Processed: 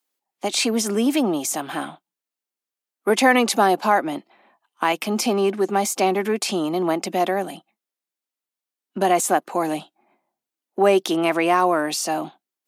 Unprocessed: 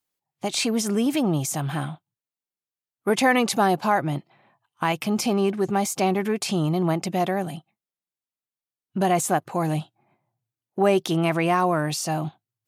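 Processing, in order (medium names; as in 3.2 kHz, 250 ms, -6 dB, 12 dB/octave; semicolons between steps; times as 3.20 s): steep high-pass 220 Hz 36 dB/octave; trim +3.5 dB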